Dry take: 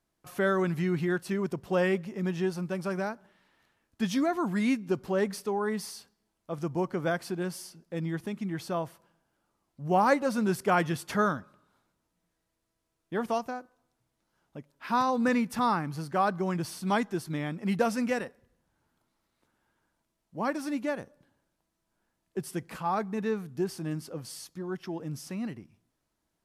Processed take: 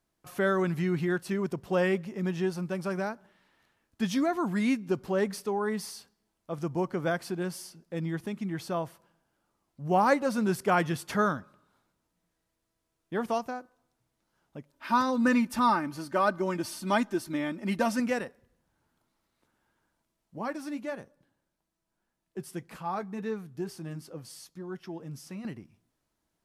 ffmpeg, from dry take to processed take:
ffmpeg -i in.wav -filter_complex "[0:a]asettb=1/sr,asplit=3[link_01][link_02][link_03];[link_01]atrim=end=14.734[link_04];[link_02]atrim=start=14.73:end=18,asetpts=PTS-STARTPTS,afade=type=in:duration=0.004:curve=qsin,afade=type=out:start_time=3.266:duration=0.004:curve=qsin,aecho=1:1:3.3:0.65,atrim=end_sample=144207[link_05];[link_03]atrim=start=17.996[link_06];[link_04][link_05]acrossfade=duration=0.004:curve1=hsin:curve2=qsin[link_07];[link_07][link_06]acrossfade=duration=0.004:curve1=qsin:curve2=hsin,asettb=1/sr,asplit=3[link_08][link_09][link_10];[link_08]atrim=end=20.384[link_11];[link_09]atrim=start=20.38:end=25.45,asetpts=PTS-STARTPTS,afade=type=in:duration=0.004:curve=qsin,afade=type=out:start_time=5.066:duration=0.004:curve=qsin,flanger=delay=4.7:depth=1.9:regen=-66:speed=1.7:shape=triangular[link_12];[link_10]atrim=start=25.446[link_13];[link_11][link_12]acrossfade=duration=0.004:curve1=hsin:curve2=qsin[link_14];[link_14][link_13]acrossfade=duration=0.004:curve1=qsin:curve2=hsin" out.wav

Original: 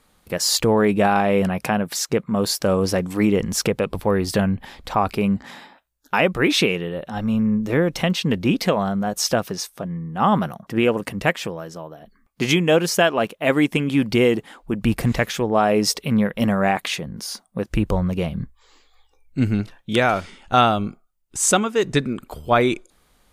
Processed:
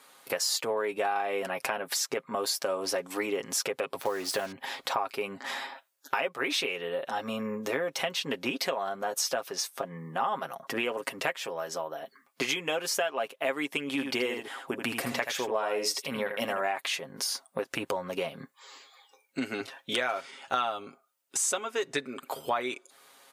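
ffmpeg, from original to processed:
ffmpeg -i in.wav -filter_complex "[0:a]asettb=1/sr,asplit=3[link_01][link_02][link_03];[link_01]atrim=end=4.014[link_04];[link_02]atrim=start=4.01:end=4.52,asetpts=PTS-STARTPTS,afade=type=in:duration=0.004:curve=qsin,afade=type=out:start_time=0.506:duration=0.004:curve=qsin,acrusher=bits=5:mix=0:aa=0.5[link_05];[link_03]atrim=start=4.516[link_06];[link_04][link_05]acrossfade=duration=0.004:curve1=hsin:curve2=qsin[link_07];[link_07][link_06]acrossfade=duration=0.004:curve1=qsin:curve2=hsin,asettb=1/sr,asplit=3[link_08][link_09][link_10];[link_08]atrim=end=13.874[link_11];[link_09]atrim=start=13.87:end=16.61,asetpts=PTS-STARTPTS,afade=type=in:duration=0.004:curve=qsin,afade=type=out:start_time=2.736:duration=0.004:curve=qsin,aecho=1:1:79:0.398,atrim=end_sample=120834[link_12];[link_10]atrim=start=16.606[link_13];[link_11][link_12]acrossfade=duration=0.004:curve1=hsin:curve2=qsin[link_14];[link_14][link_13]acrossfade=duration=0.004:curve1=qsin:curve2=hsin,asettb=1/sr,asplit=3[link_15][link_16][link_17];[link_15]atrim=end=18.324[link_18];[link_16]atrim=start=18.32:end=19.61,asetpts=PTS-STARTPTS,afade=type=in:duration=0.004:curve=qsin,afade=type=out:start_time=1.286:duration=0.004:curve=qsin,highpass=160[link_19];[link_17]atrim=start=19.606[link_20];[link_18][link_19]acrossfade=duration=0.004:curve1=hsin:curve2=qsin[link_21];[link_21][link_20]acrossfade=duration=0.004:curve1=qsin:curve2=hsin,highpass=490,aecho=1:1:7.4:0.59,acompressor=threshold=-35dB:ratio=4,volume=5dB" out.wav

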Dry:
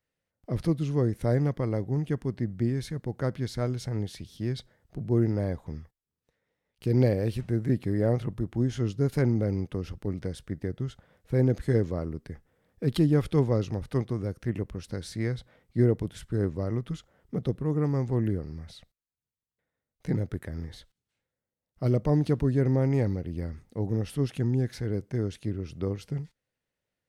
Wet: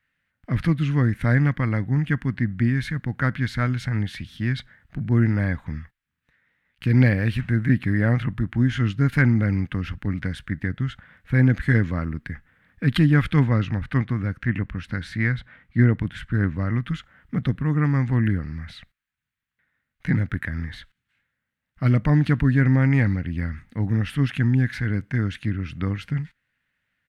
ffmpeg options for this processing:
ffmpeg -i in.wav -filter_complex "[0:a]asettb=1/sr,asplit=3[link_01][link_02][link_03];[link_01]atrim=end=13.454[link_04];[link_02]atrim=start=13.45:end=16.75,asetpts=PTS-STARTPTS,afade=type=in:duration=0.004:curve=qsin,afade=type=out:start_time=3.296:duration=0.004:curve=qsin,highshelf=frequency=5100:gain=-7.5[link_05];[link_03]atrim=start=16.746[link_06];[link_04][link_05]acrossfade=duration=0.004:curve1=hsin:curve2=qsin[link_07];[link_07][link_06]acrossfade=duration=0.004:curve1=qsin:curve2=hsin,firequalizer=gain_entry='entry(270,0);entry(380,-13);entry(1600,12);entry(5200,-8)':delay=0.05:min_phase=1,volume=7dB" out.wav

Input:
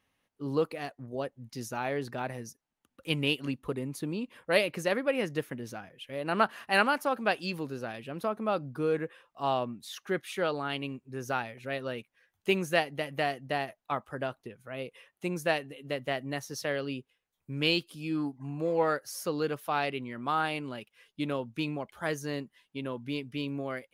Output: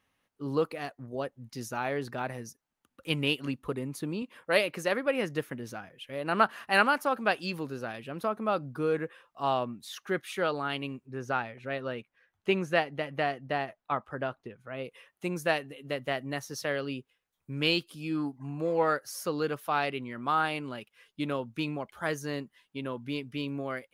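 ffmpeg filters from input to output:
ffmpeg -i in.wav -filter_complex "[0:a]asettb=1/sr,asplit=3[link_01][link_02][link_03];[link_01]atrim=end=4.224[link_04];[link_02]atrim=start=4.22:end=5.06,asetpts=PTS-STARTPTS,afade=type=in:duration=0.004:curve=qsin,afade=type=out:start_time=0.836:duration=0.004:curve=qsin,highpass=frequency=170:poles=1[link_05];[link_03]atrim=start=5.056[link_06];[link_04][link_05]acrossfade=duration=0.004:curve1=hsin:curve2=qsin[link_07];[link_07][link_06]acrossfade=duration=0.004:curve1=qsin:curve2=hsin,asplit=3[link_08][link_09][link_10];[link_08]afade=type=out:start_time=11.06:duration=0.02[link_11];[link_09]aemphasis=mode=reproduction:type=50fm,afade=type=in:start_time=11.06:duration=0.02,afade=type=out:start_time=14.83:duration=0.02[link_12];[link_10]afade=type=in:start_time=14.83:duration=0.02[link_13];[link_11][link_12][link_13]amix=inputs=3:normalize=0,equalizer=frequency=1300:width=1.8:gain=3" out.wav

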